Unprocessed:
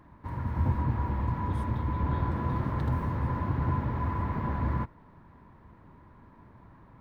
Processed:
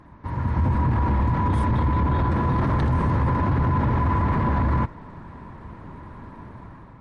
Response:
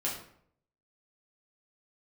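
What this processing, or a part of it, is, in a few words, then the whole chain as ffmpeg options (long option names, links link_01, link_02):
low-bitrate web radio: -af "dynaudnorm=framelen=300:gausssize=5:maxgain=7.5dB,alimiter=limit=-21dB:level=0:latency=1:release=16,volume=7dB" -ar 48000 -c:a libmp3lame -b:a 48k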